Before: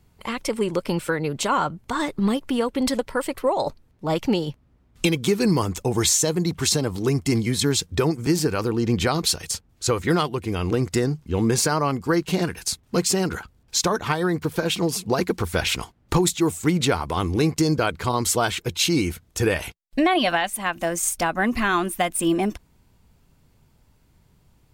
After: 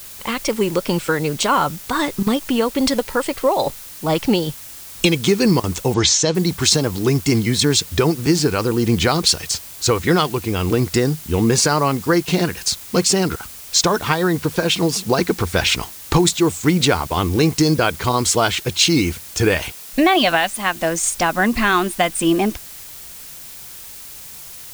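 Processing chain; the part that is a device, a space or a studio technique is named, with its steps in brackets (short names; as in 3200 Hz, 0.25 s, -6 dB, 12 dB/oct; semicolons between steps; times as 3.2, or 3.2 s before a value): worn cassette (LPF 6300 Hz 12 dB/oct; wow and flutter; level dips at 2.23/5.6/13.36/17.07, 36 ms -17 dB; white noise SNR 23 dB); 5.94–6.35 LPF 6700 Hz 24 dB/oct; high shelf 4200 Hz +7 dB; gain +4.5 dB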